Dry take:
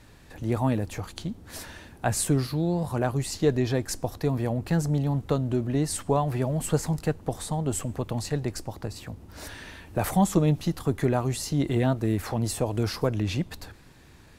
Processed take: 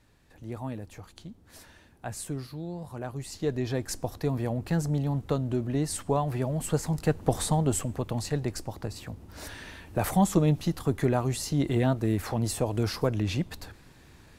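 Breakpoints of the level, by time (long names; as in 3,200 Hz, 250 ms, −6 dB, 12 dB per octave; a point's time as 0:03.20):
0:02.96 −11 dB
0:03.91 −2.5 dB
0:06.86 −2.5 dB
0:07.38 +6 dB
0:07.91 −1 dB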